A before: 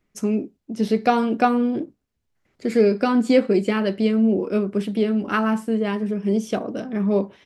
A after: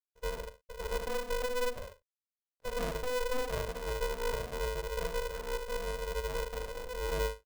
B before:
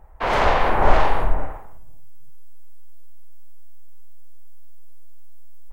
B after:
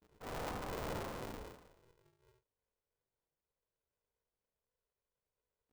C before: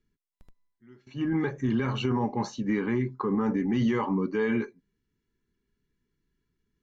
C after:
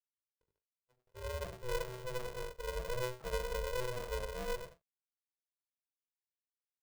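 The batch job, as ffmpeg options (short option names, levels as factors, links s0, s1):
-filter_complex "[0:a]acrusher=bits=6:mix=0:aa=0.5,bandpass=f=210:t=q:w=2.2:csg=0,asoftclip=type=tanh:threshold=0.0841,flanger=delay=15.5:depth=5.6:speed=1.3,asplit=2[s0][s1];[s1]adelay=40,volume=0.251[s2];[s0][s2]amix=inputs=2:normalize=0,asplit=2[s3][s4];[s4]aecho=0:1:71:0.531[s5];[s3][s5]amix=inputs=2:normalize=0,aeval=exprs='val(0)*sgn(sin(2*PI*250*n/s))':c=same,volume=0.501"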